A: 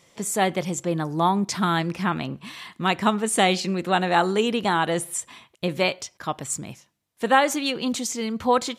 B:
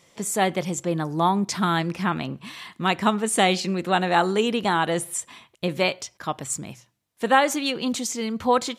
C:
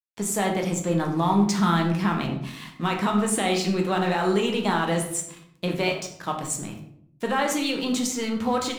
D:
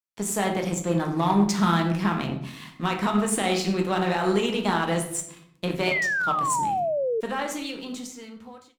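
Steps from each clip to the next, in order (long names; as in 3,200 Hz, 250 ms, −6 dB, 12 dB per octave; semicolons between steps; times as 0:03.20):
mains-hum notches 60/120 Hz
brickwall limiter −16 dBFS, peak gain reduction 10.5 dB; dead-zone distortion −45 dBFS; on a send at −1.5 dB: convolution reverb RT60 0.70 s, pre-delay 10 ms
fade-out on the ending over 2.14 s; harmonic generator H 7 −30 dB, 8 −34 dB, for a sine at −8.5 dBFS; sound drawn into the spectrogram fall, 0:05.91–0:07.21, 430–2,200 Hz −25 dBFS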